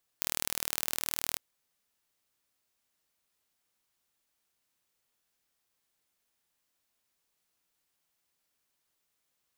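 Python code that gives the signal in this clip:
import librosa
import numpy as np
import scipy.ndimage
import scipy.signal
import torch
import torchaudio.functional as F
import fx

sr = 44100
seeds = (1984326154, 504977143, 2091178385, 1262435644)

y = fx.impulse_train(sr, length_s=1.15, per_s=39.2, accent_every=2, level_db=-2.0)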